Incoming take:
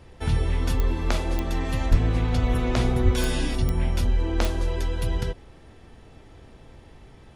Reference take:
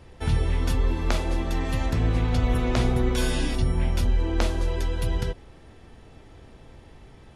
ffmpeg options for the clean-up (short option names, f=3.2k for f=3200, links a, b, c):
-filter_complex "[0:a]adeclick=t=4,asplit=3[a][b][c];[a]afade=t=out:st=1.9:d=0.02[d];[b]highpass=f=140:w=0.5412,highpass=f=140:w=1.3066,afade=t=in:st=1.9:d=0.02,afade=t=out:st=2.02:d=0.02[e];[c]afade=t=in:st=2.02:d=0.02[f];[d][e][f]amix=inputs=3:normalize=0,asplit=3[g][h][i];[g]afade=t=out:st=3.04:d=0.02[j];[h]highpass=f=140:w=0.5412,highpass=f=140:w=1.3066,afade=t=in:st=3.04:d=0.02,afade=t=out:st=3.16:d=0.02[k];[i]afade=t=in:st=3.16:d=0.02[l];[j][k][l]amix=inputs=3:normalize=0"